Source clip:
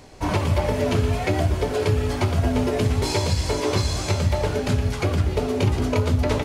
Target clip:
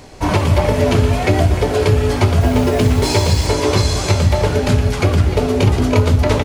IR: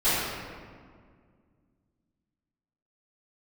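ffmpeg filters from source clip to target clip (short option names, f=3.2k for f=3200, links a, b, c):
-filter_complex "[0:a]asettb=1/sr,asplit=3[a][b][c];[a]atrim=end=2.414[d];[b]atrim=start=2.41:end=3.47,asetpts=PTS-STARTPTS,afade=t=in:d=0.004:c=qsin,afade=t=out:st=1.056:d=0.004:c=qsin,acrusher=bits=8:dc=4:mix=0:aa=0.000001[e];[c]atrim=start=3.466[f];[d][e]acrossfade=d=0.004:c1=hsin:c2=qsin[g];[g][f]acrossfade=d=0.004:c1=qsin:c2=hsin,asplit=2[h][i];[i]adelay=303.2,volume=-12dB,highshelf=f=4k:g=-6.82[j];[h][j]amix=inputs=2:normalize=0,volume=7dB"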